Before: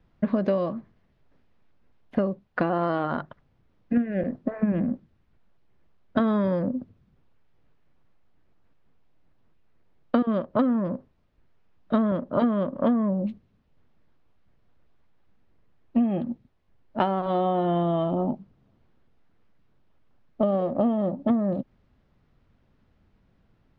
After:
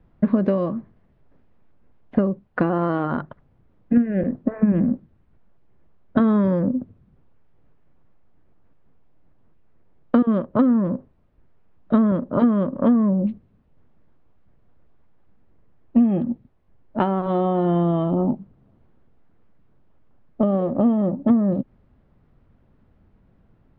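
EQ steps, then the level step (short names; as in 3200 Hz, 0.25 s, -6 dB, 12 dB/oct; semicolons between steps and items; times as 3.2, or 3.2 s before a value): LPF 1100 Hz 6 dB/oct; dynamic EQ 670 Hz, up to -6 dB, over -40 dBFS, Q 2; +6.5 dB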